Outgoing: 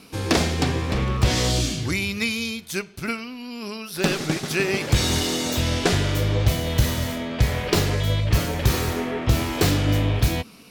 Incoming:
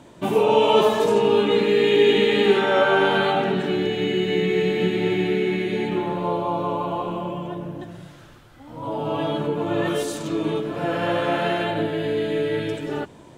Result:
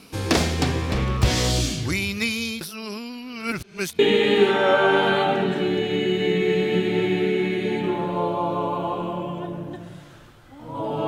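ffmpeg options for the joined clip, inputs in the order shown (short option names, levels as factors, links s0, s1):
-filter_complex "[0:a]apad=whole_dur=11.07,atrim=end=11.07,asplit=2[s0][s1];[s0]atrim=end=2.612[s2];[s1]atrim=start=2.608:end=3.992,asetpts=PTS-STARTPTS,areverse[s3];[1:a]atrim=start=2.068:end=9.15[s4];[s2][s3]acrossfade=d=0.004:c1=hsin:c2=hsin[s5];[s5][s4]acrossfade=d=0.004:c1=hsin:c2=hsin"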